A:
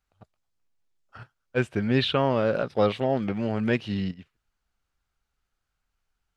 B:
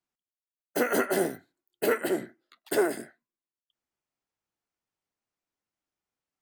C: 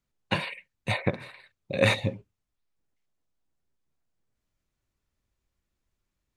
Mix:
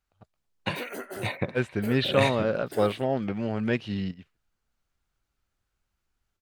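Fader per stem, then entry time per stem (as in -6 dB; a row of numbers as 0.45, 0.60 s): -2.0, -12.0, -3.0 dB; 0.00, 0.00, 0.35 s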